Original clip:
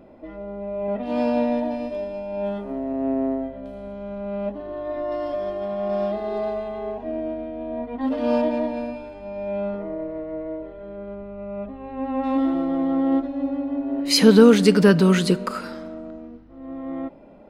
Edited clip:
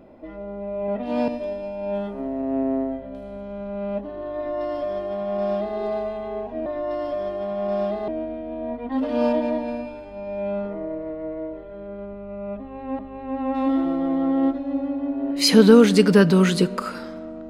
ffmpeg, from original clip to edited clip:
ffmpeg -i in.wav -filter_complex "[0:a]asplit=5[link_01][link_02][link_03][link_04][link_05];[link_01]atrim=end=1.282[link_06];[link_02]atrim=start=1.788:end=7.172[link_07];[link_03]atrim=start=4.868:end=6.292[link_08];[link_04]atrim=start=7.168:end=12.082[link_09];[link_05]atrim=start=11.678[link_10];[link_06][link_07]acrossfade=duration=0.004:curve1=hsin:curve2=hsin[link_11];[link_11][link_08]acrossfade=duration=0.004:curve1=hsin:curve2=hsin[link_12];[link_12][link_09]acrossfade=duration=0.004:curve1=hsin:curve2=hsin[link_13];[link_13][link_10]acrossfade=duration=0.004:curve1=hsin:curve2=hsin" out.wav

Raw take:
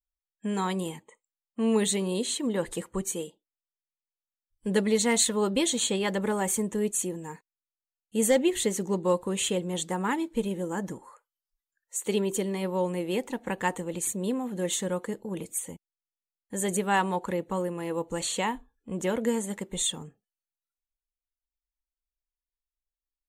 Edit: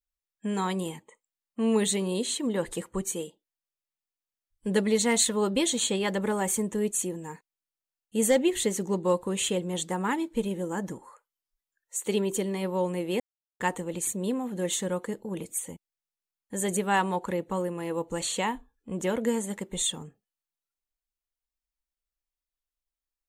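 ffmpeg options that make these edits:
ffmpeg -i in.wav -filter_complex "[0:a]asplit=3[link_01][link_02][link_03];[link_01]atrim=end=13.2,asetpts=PTS-STARTPTS,afade=type=out:start_time=13.196:duration=0.004:curve=hsin[link_04];[link_02]atrim=start=13.2:end=13.6,asetpts=PTS-STARTPTS,volume=0[link_05];[link_03]atrim=start=13.6,asetpts=PTS-STARTPTS,afade=type=in:duration=0.004:curve=hsin[link_06];[link_04][link_05][link_06]concat=n=3:v=0:a=1" out.wav

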